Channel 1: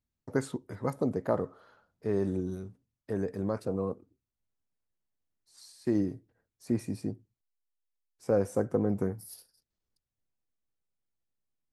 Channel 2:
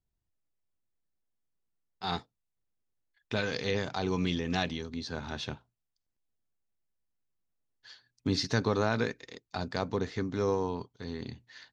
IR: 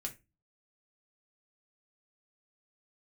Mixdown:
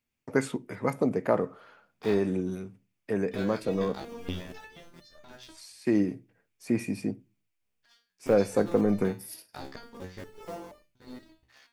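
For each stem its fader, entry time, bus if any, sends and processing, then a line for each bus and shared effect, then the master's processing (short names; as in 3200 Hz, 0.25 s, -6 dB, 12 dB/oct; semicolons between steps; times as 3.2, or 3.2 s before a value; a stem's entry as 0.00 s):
+2.0 dB, 0.00 s, send -9.5 dB, HPF 150 Hz; bell 2400 Hz +11.5 dB 0.67 oct
+2.0 dB, 0.00 s, send -9 dB, cycle switcher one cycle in 2, muted; notches 60/120/180 Hz; stepped resonator 4.2 Hz 67–600 Hz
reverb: on, RT60 0.25 s, pre-delay 4 ms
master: notch 4000 Hz, Q 18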